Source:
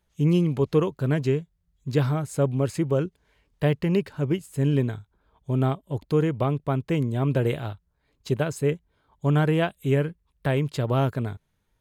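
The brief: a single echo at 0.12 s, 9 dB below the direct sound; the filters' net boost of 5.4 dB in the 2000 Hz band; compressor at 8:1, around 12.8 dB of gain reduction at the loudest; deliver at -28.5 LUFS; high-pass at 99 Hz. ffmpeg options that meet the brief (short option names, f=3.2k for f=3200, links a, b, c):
-af "highpass=99,equalizer=f=2k:t=o:g=7,acompressor=threshold=-30dB:ratio=8,aecho=1:1:120:0.355,volume=7dB"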